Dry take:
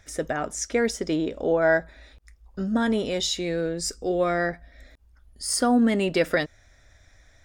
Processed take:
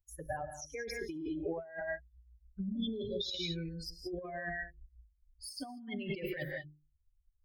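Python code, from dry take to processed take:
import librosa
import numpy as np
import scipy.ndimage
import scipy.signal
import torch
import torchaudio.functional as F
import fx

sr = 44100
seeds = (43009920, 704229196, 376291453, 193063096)

y = fx.bin_expand(x, sr, power=3.0)
y = fx.hum_notches(y, sr, base_hz=50, count=8)
y = fx.rev_gated(y, sr, seeds[0], gate_ms=220, shape='rising', drr_db=9.5)
y = fx.spec_repair(y, sr, seeds[1], start_s=2.77, length_s=0.51, low_hz=620.0, high_hz=3200.0, source='before')
y = fx.notch(y, sr, hz=490.0, q=12.0)
y = fx.over_compress(y, sr, threshold_db=-36.0, ratio=-1.0)
y = fx.high_shelf(y, sr, hz=6800.0, db=-4.5, at=(3.45, 5.74))
y = fx.env_phaser(y, sr, low_hz=230.0, high_hz=1400.0, full_db=-39.5)
y = fx.peak_eq(y, sr, hz=1600.0, db=14.5, octaves=0.3)
y = y * librosa.db_to_amplitude(-2.0)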